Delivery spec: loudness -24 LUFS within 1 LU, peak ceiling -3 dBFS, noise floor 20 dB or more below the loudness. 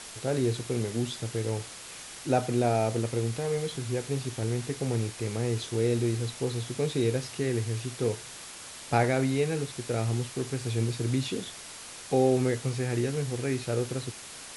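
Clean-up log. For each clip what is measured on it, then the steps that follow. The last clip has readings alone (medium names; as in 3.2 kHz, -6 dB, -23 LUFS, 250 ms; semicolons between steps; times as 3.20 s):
noise floor -44 dBFS; noise floor target -50 dBFS; loudness -29.5 LUFS; peak level -10.0 dBFS; loudness target -24.0 LUFS
-> noise reduction 6 dB, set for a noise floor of -44 dBFS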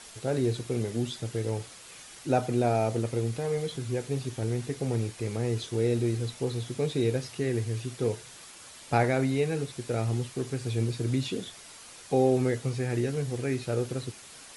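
noise floor -48 dBFS; noise floor target -50 dBFS
-> noise reduction 6 dB, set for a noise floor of -48 dBFS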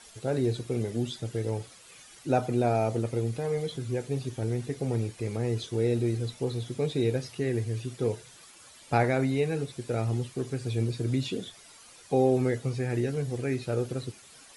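noise floor -53 dBFS; loudness -30.0 LUFS; peak level -10.0 dBFS; loudness target -24.0 LUFS
-> trim +6 dB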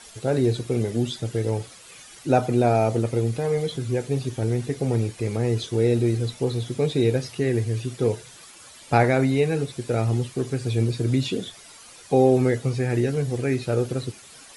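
loudness -24.0 LUFS; peak level -4.0 dBFS; noise floor -47 dBFS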